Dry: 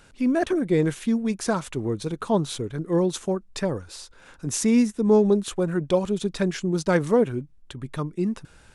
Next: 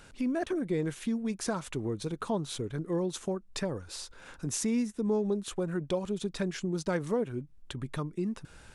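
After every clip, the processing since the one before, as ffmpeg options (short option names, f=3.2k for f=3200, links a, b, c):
-af "acompressor=threshold=-35dB:ratio=2"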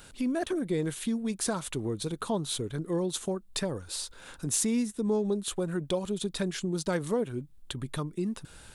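-af "aexciter=amount=1.2:drive=8:freq=3.2k,volume=1dB"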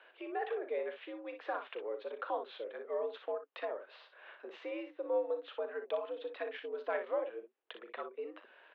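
-af "highpass=f=350:t=q:w=0.5412,highpass=f=350:t=q:w=1.307,lowpass=f=2.8k:t=q:w=0.5176,lowpass=f=2.8k:t=q:w=0.7071,lowpass=f=2.8k:t=q:w=1.932,afreqshift=87,aecho=1:1:37|60:0.266|0.355,volume=-4.5dB"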